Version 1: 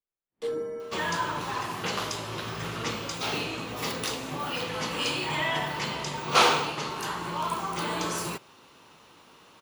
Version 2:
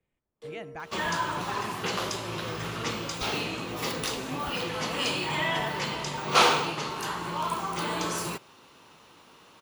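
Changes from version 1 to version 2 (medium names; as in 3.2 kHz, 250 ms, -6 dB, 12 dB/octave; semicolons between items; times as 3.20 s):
speech: unmuted; first sound -11.5 dB; reverb: on, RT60 0.35 s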